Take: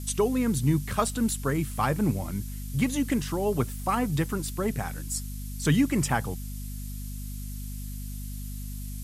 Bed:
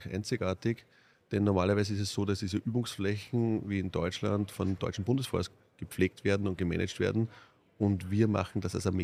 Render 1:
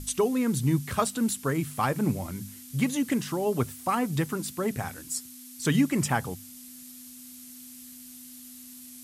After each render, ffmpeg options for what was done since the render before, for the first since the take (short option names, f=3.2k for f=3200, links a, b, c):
-af "bandreject=f=50:t=h:w=6,bandreject=f=100:t=h:w=6,bandreject=f=150:t=h:w=6,bandreject=f=200:t=h:w=6"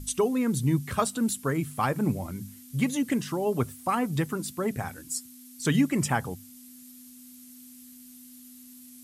-af "afftdn=nr=6:nf=-46"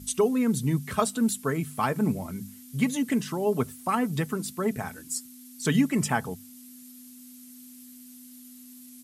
-af "highpass=73,aecho=1:1:4.6:0.33"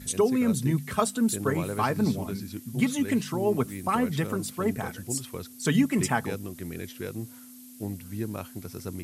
-filter_complex "[1:a]volume=-6dB[a];[0:a][a]amix=inputs=2:normalize=0"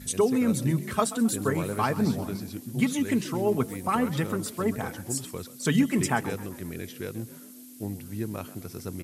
-filter_complex "[0:a]asplit=5[a][b][c][d][e];[b]adelay=131,afreqshift=44,volume=-16.5dB[f];[c]adelay=262,afreqshift=88,volume=-22.7dB[g];[d]adelay=393,afreqshift=132,volume=-28.9dB[h];[e]adelay=524,afreqshift=176,volume=-35.1dB[i];[a][f][g][h][i]amix=inputs=5:normalize=0"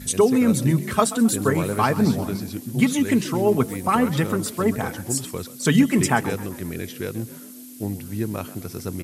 -af "volume=6dB"